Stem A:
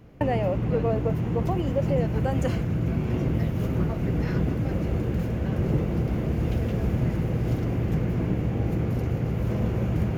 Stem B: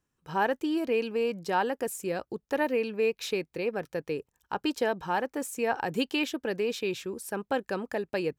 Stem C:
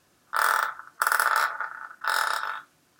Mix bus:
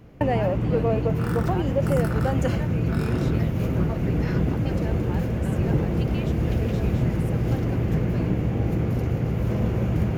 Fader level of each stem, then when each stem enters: +2.0, -11.5, -15.0 dB; 0.00, 0.00, 0.85 s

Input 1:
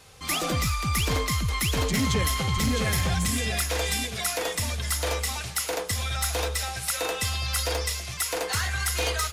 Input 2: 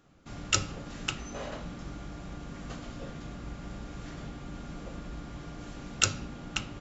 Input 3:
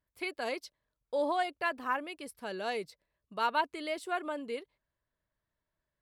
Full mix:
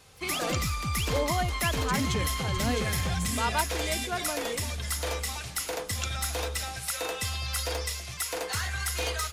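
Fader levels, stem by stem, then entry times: -4.0, -11.5, +0.5 dB; 0.00, 0.00, 0.00 s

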